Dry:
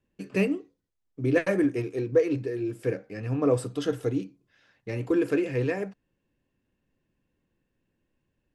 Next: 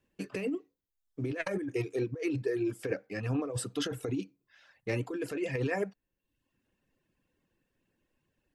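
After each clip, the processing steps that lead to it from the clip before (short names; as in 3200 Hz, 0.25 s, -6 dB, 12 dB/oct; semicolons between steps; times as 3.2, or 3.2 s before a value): reverb removal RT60 0.7 s; low shelf 320 Hz -6 dB; negative-ratio compressor -32 dBFS, ratio -1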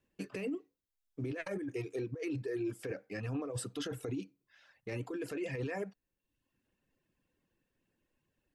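limiter -26.5 dBFS, peak gain reduction 7.5 dB; gain -3 dB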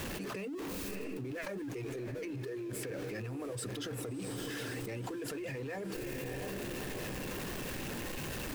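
zero-crossing step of -46 dBFS; diffused feedback echo 0.658 s, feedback 44%, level -10.5 dB; fast leveller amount 100%; gain -7 dB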